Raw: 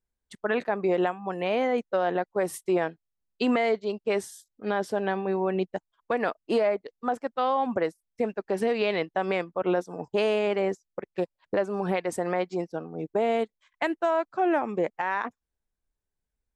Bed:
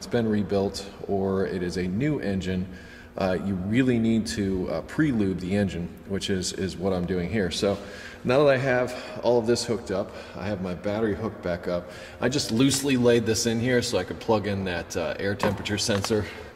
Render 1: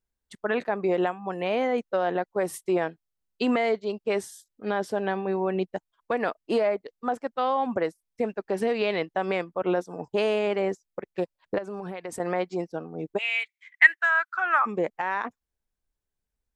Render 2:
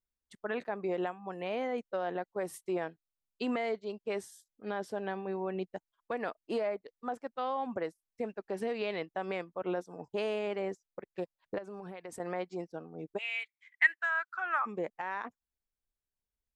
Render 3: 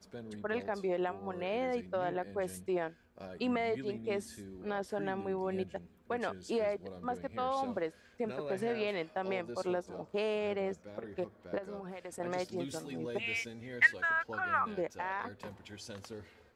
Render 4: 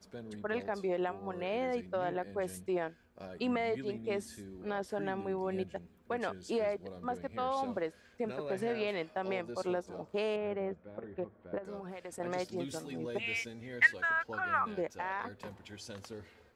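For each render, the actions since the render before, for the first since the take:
11.58–12.20 s: compression, threshold -31 dBFS; 13.17–14.65 s: resonant high-pass 2.7 kHz -> 1.2 kHz, resonance Q 11
trim -9 dB
add bed -22 dB
10.36–11.65 s: distance through air 480 m

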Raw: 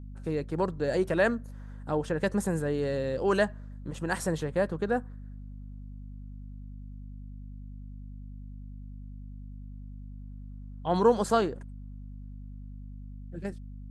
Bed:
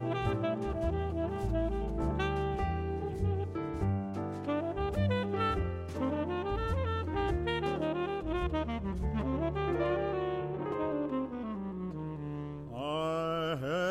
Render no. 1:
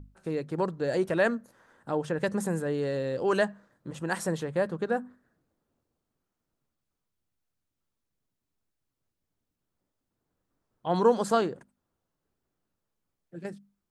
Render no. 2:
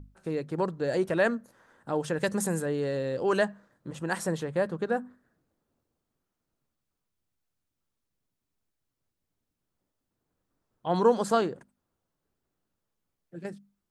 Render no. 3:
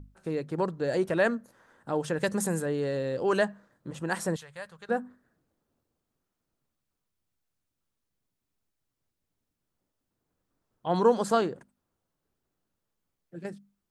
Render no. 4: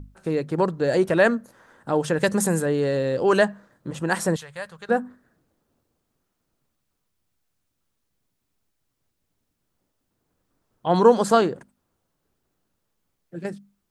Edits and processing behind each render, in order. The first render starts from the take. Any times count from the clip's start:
hum notches 50/100/150/200/250 Hz
1.95–2.66 s: treble shelf 3.5 kHz +8.5 dB
4.36–4.89 s: amplifier tone stack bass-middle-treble 10-0-10
trim +7 dB

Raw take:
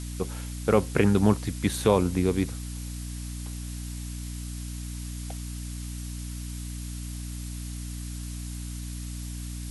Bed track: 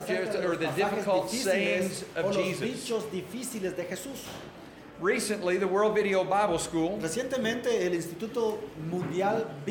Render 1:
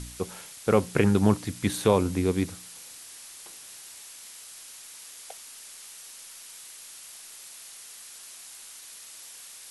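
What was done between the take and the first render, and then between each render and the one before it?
de-hum 60 Hz, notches 5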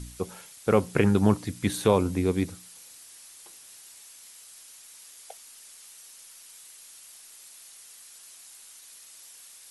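noise reduction 6 dB, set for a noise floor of -46 dBFS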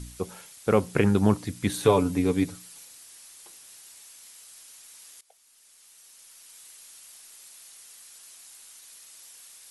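1.82–2.85 s: comb 7 ms; 5.21–6.67 s: fade in, from -19 dB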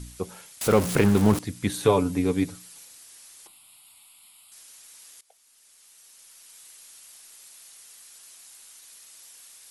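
0.61–1.39 s: jump at every zero crossing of -24.5 dBFS; 3.47–4.52 s: static phaser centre 1.7 kHz, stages 6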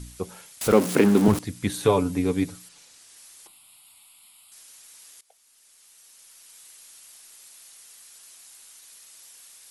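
0.72–1.28 s: resonant high-pass 250 Hz, resonance Q 2; 2.68–3.15 s: low-pass 6 kHz -> 10 kHz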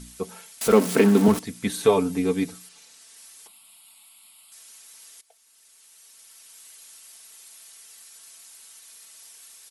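bass shelf 110 Hz -8.5 dB; comb 4.5 ms, depth 55%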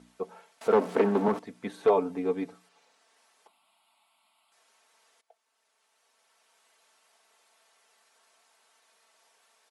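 wavefolder -10 dBFS; band-pass filter 700 Hz, Q 1.1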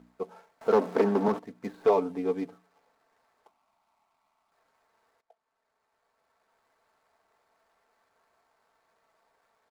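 median filter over 15 samples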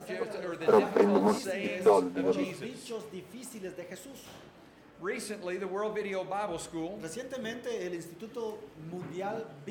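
add bed track -8.5 dB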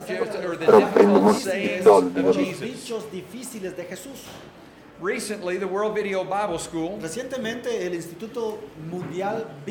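trim +9 dB

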